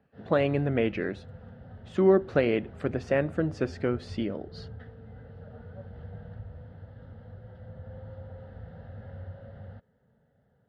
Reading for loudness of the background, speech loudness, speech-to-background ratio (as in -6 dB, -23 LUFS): -45.5 LUFS, -27.5 LUFS, 18.0 dB